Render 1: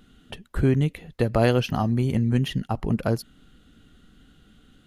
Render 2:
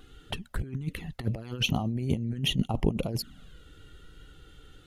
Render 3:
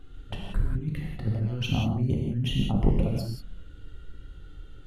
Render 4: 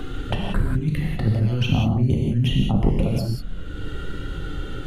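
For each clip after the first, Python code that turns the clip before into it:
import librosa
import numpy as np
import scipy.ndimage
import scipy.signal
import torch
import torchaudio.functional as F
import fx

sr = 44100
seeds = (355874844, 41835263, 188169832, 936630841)

y1 = fx.over_compress(x, sr, threshold_db=-27.0, ratio=-0.5)
y1 = fx.env_flanger(y1, sr, rest_ms=2.8, full_db=-24.5)
y2 = fx.tilt_eq(y1, sr, slope=-2.0)
y2 = fx.rev_gated(y2, sr, seeds[0], gate_ms=210, shape='flat', drr_db=-1.5)
y2 = y2 * librosa.db_to_amplitude(-5.0)
y3 = fx.band_squash(y2, sr, depth_pct=70)
y3 = y3 * librosa.db_to_amplitude(6.5)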